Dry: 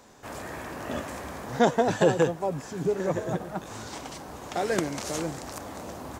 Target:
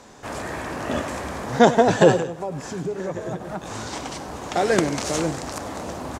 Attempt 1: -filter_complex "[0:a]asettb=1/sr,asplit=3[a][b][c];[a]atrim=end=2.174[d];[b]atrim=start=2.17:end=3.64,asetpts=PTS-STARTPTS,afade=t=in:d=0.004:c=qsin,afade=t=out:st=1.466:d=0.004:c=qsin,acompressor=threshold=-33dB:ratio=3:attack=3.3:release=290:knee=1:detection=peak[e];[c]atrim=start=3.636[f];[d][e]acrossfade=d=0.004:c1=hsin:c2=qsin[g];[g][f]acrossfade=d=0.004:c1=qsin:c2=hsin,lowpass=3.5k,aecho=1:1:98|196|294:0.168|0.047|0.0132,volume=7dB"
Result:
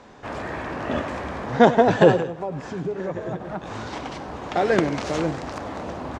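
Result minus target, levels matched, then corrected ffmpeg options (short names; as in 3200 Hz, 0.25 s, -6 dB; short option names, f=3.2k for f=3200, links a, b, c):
8000 Hz band -12.0 dB
-filter_complex "[0:a]asettb=1/sr,asplit=3[a][b][c];[a]atrim=end=2.174[d];[b]atrim=start=2.17:end=3.64,asetpts=PTS-STARTPTS,afade=t=in:d=0.004:c=qsin,afade=t=out:st=1.466:d=0.004:c=qsin,acompressor=threshold=-33dB:ratio=3:attack=3.3:release=290:knee=1:detection=peak[e];[c]atrim=start=3.636[f];[d][e]acrossfade=d=0.004:c1=hsin:c2=qsin[g];[g][f]acrossfade=d=0.004:c1=qsin:c2=hsin,lowpass=10k,aecho=1:1:98|196|294:0.168|0.047|0.0132,volume=7dB"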